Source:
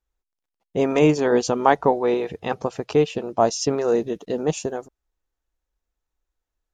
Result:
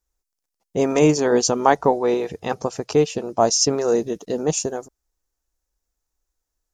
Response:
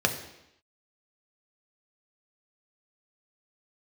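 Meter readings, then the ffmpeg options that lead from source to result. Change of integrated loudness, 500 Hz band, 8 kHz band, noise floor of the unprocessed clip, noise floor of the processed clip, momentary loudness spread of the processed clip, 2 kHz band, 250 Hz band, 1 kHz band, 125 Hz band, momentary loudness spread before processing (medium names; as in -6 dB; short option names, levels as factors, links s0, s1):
+1.5 dB, +1.0 dB, +10.0 dB, -85 dBFS, -82 dBFS, 10 LU, 0.0 dB, +1.0 dB, +1.0 dB, +1.0 dB, 10 LU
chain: -af "highshelf=f=4300:t=q:w=1.5:g=7,volume=1.12"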